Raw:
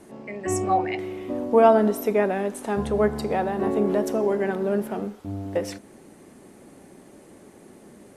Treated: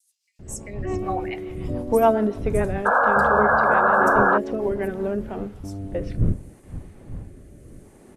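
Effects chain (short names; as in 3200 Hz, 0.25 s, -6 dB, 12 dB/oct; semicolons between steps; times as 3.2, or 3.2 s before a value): wind noise 110 Hz -31 dBFS; gate with hold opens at -38 dBFS; rotary speaker horn 7 Hz, later 0.7 Hz, at 4.14; painted sound noise, 2.46–3.99, 460–1700 Hz -18 dBFS; bands offset in time highs, lows 0.39 s, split 4700 Hz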